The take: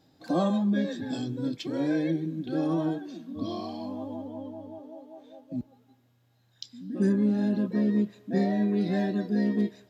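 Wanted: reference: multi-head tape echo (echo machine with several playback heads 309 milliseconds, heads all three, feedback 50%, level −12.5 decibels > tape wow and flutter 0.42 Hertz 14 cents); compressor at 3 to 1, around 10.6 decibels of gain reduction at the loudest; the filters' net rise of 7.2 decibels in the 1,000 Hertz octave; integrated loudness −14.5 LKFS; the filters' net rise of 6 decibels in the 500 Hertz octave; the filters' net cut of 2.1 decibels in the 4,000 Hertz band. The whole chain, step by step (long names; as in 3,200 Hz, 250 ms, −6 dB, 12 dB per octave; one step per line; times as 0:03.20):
parametric band 500 Hz +6 dB
parametric band 1,000 Hz +7.5 dB
parametric band 4,000 Hz −3 dB
downward compressor 3 to 1, threshold −32 dBFS
echo machine with several playback heads 309 ms, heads all three, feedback 50%, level −12.5 dB
tape wow and flutter 0.42 Hz 14 cents
level +19 dB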